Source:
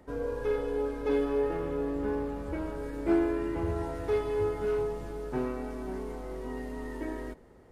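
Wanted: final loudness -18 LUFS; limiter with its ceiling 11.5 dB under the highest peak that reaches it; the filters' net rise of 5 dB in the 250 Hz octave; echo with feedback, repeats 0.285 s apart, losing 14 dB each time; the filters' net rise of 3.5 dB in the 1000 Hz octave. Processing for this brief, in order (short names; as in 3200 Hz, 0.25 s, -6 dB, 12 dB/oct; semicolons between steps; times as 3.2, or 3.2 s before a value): bell 250 Hz +6.5 dB; bell 1000 Hz +4 dB; limiter -22.5 dBFS; feedback echo 0.285 s, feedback 20%, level -14 dB; gain +14 dB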